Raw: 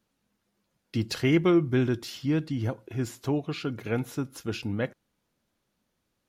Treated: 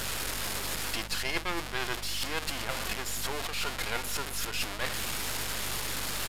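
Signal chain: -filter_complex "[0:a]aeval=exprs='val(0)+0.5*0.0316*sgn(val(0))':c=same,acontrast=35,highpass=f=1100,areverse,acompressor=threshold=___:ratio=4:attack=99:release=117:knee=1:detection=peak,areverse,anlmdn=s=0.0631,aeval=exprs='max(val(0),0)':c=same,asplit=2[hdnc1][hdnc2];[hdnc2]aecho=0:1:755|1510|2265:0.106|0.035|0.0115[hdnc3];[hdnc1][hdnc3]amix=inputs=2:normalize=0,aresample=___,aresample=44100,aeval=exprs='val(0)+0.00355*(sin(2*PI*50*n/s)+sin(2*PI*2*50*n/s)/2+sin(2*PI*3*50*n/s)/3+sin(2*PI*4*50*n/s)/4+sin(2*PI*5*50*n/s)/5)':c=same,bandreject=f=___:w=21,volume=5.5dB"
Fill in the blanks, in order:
-39dB, 32000, 6000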